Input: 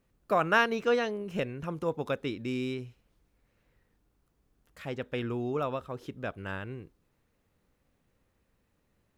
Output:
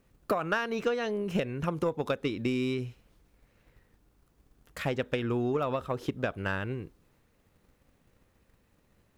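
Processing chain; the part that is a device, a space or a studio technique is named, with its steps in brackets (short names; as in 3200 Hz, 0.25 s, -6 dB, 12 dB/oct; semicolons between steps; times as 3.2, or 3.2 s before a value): drum-bus smash (transient shaper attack +8 dB, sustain +2 dB; compressor 8:1, threshold -29 dBFS, peak gain reduction 14 dB; soft clip -22.5 dBFS, distortion -20 dB); gain +5 dB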